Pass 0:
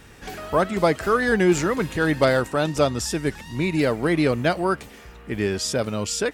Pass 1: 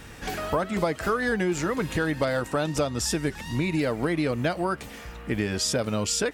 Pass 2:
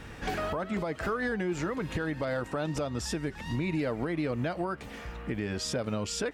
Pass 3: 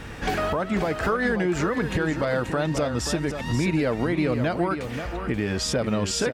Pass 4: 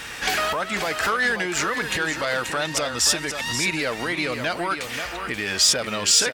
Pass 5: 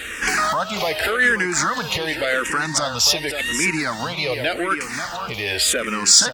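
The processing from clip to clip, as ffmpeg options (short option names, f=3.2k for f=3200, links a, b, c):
-af "bandreject=f=390:w=12,acompressor=threshold=-26dB:ratio=6,volume=3.5dB"
-af "highshelf=f=5.4k:g=-12,alimiter=limit=-22.5dB:level=0:latency=1:release=223"
-af "aecho=1:1:532:0.376,volume=7dB"
-filter_complex "[0:a]asplit=2[a][b];[b]highpass=f=720:p=1,volume=9dB,asoftclip=type=tanh:threshold=-12.5dB[c];[a][c]amix=inputs=2:normalize=0,lowpass=f=3.3k:p=1,volume=-6dB,crystalizer=i=10:c=0,volume=-5.5dB"
-filter_complex "[0:a]asplit=2[a][b];[b]afreqshift=-0.88[c];[a][c]amix=inputs=2:normalize=1,volume=6dB"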